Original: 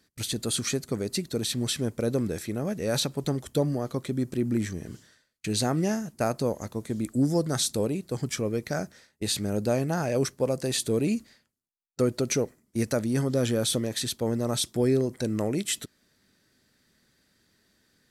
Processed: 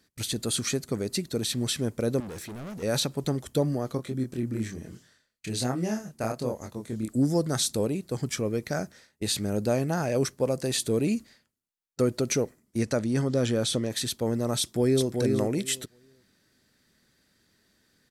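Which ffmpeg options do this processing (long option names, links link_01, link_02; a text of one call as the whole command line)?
ffmpeg -i in.wav -filter_complex "[0:a]asettb=1/sr,asplit=3[link_01][link_02][link_03];[link_01]atrim=end=2.204[link_04];[link_02]atrim=start=2.2:end=2.83,asetpts=PTS-STARTPTS,afade=type=in:duration=0.004:curve=qsin,afade=type=out:start_time=0.626:duration=0.004:curve=qsin,asoftclip=type=hard:threshold=-36.5dB[link_05];[link_03]atrim=start=2.826[link_06];[link_04][link_05]acrossfade=duration=0.004:curve1=hsin:curve2=qsin[link_07];[link_07][link_06]acrossfade=duration=0.004:curve1=qsin:curve2=hsin,asplit=3[link_08][link_09][link_10];[link_08]afade=type=out:start_time=3.97:duration=0.02[link_11];[link_09]flanger=delay=22.5:depth=5:speed=1.2,afade=type=in:start_time=3.97:duration=0.02,afade=type=out:start_time=7.08:duration=0.02[link_12];[link_10]afade=type=in:start_time=7.08:duration=0.02[link_13];[link_11][link_12][link_13]amix=inputs=3:normalize=0,asettb=1/sr,asplit=3[link_14][link_15][link_16];[link_14]atrim=end=12.784[link_17];[link_15]atrim=start=12.78:end=13.9,asetpts=PTS-STARTPTS,afade=type=in:duration=0.004:curve=qsin,afade=type=out:start_time=1.116:duration=0.004:curve=qsin,lowpass=8000[link_18];[link_16]atrim=start=13.896[link_19];[link_17][link_18]acrossfade=duration=0.004:curve1=hsin:curve2=qsin[link_20];[link_20][link_19]acrossfade=duration=0.004:curve1=qsin:curve2=hsin,asplit=2[link_21][link_22];[link_22]afade=type=in:start_time=14.59:duration=0.01,afade=type=out:start_time=15.11:duration=0.01,aecho=0:1:380|760|1140:0.630957|0.0946436|0.0141965[link_23];[link_21][link_23]amix=inputs=2:normalize=0" out.wav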